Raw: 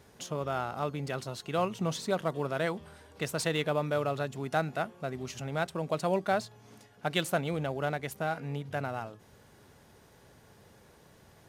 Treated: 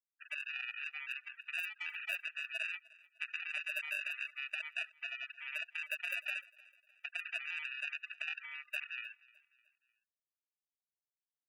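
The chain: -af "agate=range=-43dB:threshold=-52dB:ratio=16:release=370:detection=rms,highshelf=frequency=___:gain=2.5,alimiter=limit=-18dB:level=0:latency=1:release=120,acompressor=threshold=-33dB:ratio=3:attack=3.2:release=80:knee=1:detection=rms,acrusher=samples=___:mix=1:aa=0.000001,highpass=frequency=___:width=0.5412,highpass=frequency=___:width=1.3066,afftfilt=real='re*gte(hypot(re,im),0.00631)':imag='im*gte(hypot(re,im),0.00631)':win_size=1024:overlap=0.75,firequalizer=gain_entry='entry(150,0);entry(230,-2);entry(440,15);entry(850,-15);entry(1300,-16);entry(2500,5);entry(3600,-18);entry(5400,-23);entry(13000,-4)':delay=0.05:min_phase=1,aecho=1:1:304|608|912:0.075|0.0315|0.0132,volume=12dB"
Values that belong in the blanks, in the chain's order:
5200, 41, 1200, 1200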